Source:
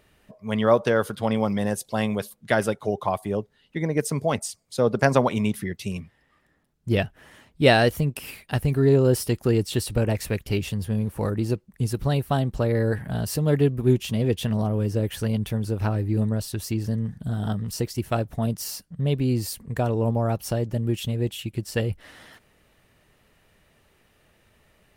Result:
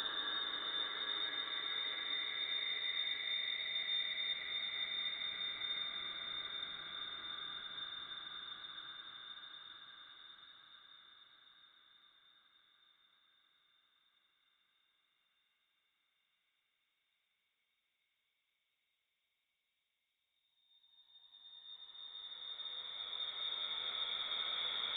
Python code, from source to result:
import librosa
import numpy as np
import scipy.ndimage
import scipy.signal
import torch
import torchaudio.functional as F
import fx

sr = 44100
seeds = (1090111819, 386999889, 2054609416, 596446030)

y = scipy.signal.sosfilt(scipy.signal.butter(16, 270.0, 'highpass', fs=sr, output='sos'), x)
y = fx.leveller(y, sr, passes=1)
y = fx.level_steps(y, sr, step_db=16)
y = fx.paulstretch(y, sr, seeds[0], factor=17.0, window_s=0.5, from_s=5.48)
y = fx.echo_diffused(y, sr, ms=745, feedback_pct=66, wet_db=-10.5)
y = fx.freq_invert(y, sr, carrier_hz=4000)
y = y * librosa.db_to_amplitude(-5.5)